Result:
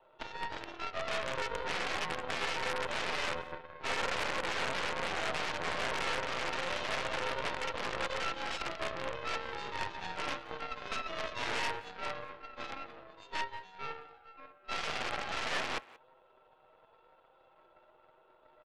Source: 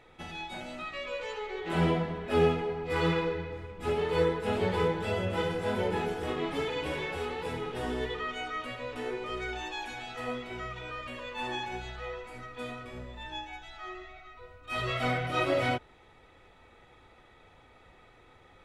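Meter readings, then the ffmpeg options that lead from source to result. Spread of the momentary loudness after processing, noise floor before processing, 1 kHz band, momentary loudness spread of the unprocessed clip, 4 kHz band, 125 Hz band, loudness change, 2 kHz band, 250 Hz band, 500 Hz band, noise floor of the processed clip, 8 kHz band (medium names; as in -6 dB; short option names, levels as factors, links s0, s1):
10 LU, -58 dBFS, -1.5 dB, 13 LU, +1.5 dB, -15.0 dB, -3.5 dB, +0.5 dB, -12.5 dB, -8.5 dB, -65 dBFS, +5.5 dB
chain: -filter_complex "[0:a]highshelf=f=2000:g=-7,aecho=1:1:7.3:0.7,acrossover=split=570[s0][s1];[s0]acompressor=threshold=0.00562:ratio=6[s2];[s1]alimiter=level_in=2:limit=0.0631:level=0:latency=1:release=22,volume=0.501[s3];[s2][s3]amix=inputs=2:normalize=0,acontrast=55,asuperstop=centerf=1900:order=8:qfactor=1.7,flanger=delay=3.7:depth=8:regen=62:speed=0.11:shape=sinusoidal,aeval=exprs='(mod(37.6*val(0)+1,2)-1)/37.6':c=same,highpass=f=300:t=q:w=0.5412,highpass=f=300:t=q:w=1.307,lowpass=f=3100:t=q:w=0.5176,lowpass=f=3100:t=q:w=0.7071,lowpass=f=3100:t=q:w=1.932,afreqshift=90,aeval=exprs='0.0531*(cos(1*acos(clip(val(0)/0.0531,-1,1)))-cos(1*PI/2))+0.0133*(cos(6*acos(clip(val(0)/0.0531,-1,1)))-cos(6*PI/2))+0.00531*(cos(7*acos(clip(val(0)/0.0531,-1,1)))-cos(7*PI/2))+0.00335*(cos(8*acos(clip(val(0)/0.0531,-1,1)))-cos(8*PI/2))':c=same,asplit=2[s4][s5];[s5]adelay=180,highpass=300,lowpass=3400,asoftclip=type=hard:threshold=0.02,volume=0.126[s6];[s4][s6]amix=inputs=2:normalize=0,volume=1.58"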